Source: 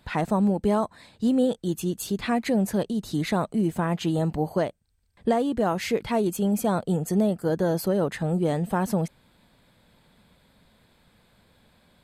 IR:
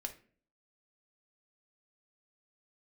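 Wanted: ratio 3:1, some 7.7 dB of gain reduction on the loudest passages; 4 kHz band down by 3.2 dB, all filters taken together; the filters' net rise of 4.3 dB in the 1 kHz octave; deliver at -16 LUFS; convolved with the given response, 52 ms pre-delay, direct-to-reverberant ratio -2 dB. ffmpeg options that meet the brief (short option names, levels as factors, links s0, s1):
-filter_complex "[0:a]equalizer=f=1000:t=o:g=6,equalizer=f=4000:t=o:g=-4.5,acompressor=threshold=0.0398:ratio=3,asplit=2[s0][s1];[1:a]atrim=start_sample=2205,adelay=52[s2];[s1][s2]afir=irnorm=-1:irlink=0,volume=1.5[s3];[s0][s3]amix=inputs=2:normalize=0,volume=3.98"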